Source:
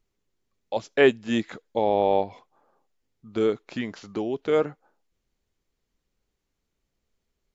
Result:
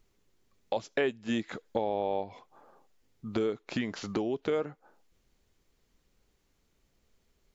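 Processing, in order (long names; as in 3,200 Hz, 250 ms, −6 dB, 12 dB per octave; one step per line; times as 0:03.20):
downward compressor 4 to 1, threshold −37 dBFS, peak gain reduction 20 dB
level +7 dB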